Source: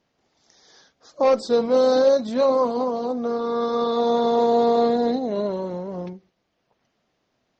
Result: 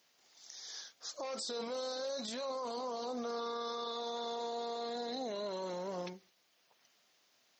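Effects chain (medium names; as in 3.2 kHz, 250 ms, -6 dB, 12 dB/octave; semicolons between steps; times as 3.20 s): tilt EQ +4.5 dB/octave; peak limiter -29.5 dBFS, peak gain reduction 20.5 dB; trim -2.5 dB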